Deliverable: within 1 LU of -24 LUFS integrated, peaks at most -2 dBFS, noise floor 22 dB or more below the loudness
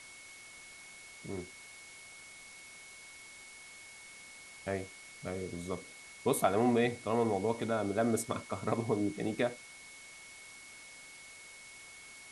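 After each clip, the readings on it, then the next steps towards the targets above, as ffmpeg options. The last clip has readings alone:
steady tone 2200 Hz; tone level -52 dBFS; noise floor -52 dBFS; noise floor target -56 dBFS; loudness -34.0 LUFS; peak -13.5 dBFS; loudness target -24.0 LUFS
-> -af "bandreject=f=2.2k:w=30"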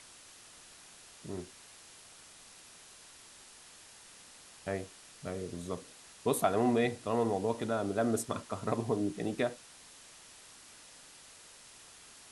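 steady tone none; noise floor -55 dBFS; noise floor target -56 dBFS
-> -af "afftdn=nr=6:nf=-55"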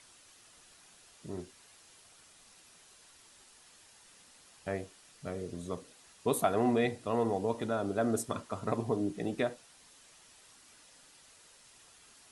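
noise floor -60 dBFS; loudness -34.0 LUFS; peak -14.0 dBFS; loudness target -24.0 LUFS
-> -af "volume=10dB"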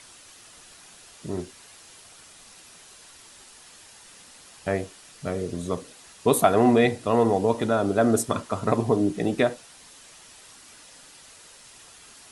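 loudness -24.0 LUFS; peak -4.0 dBFS; noise floor -50 dBFS

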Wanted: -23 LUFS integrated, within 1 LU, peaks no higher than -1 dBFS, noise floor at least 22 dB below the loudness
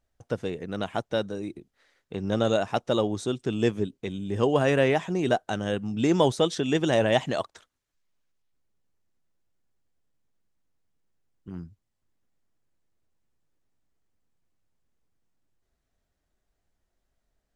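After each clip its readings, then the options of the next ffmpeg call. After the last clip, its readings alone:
loudness -26.5 LUFS; peak -7.5 dBFS; loudness target -23.0 LUFS
-> -af "volume=3.5dB"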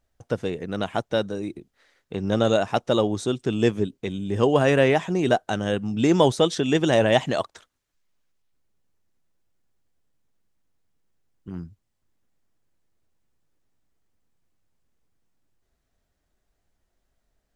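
loudness -23.0 LUFS; peak -4.0 dBFS; noise floor -76 dBFS

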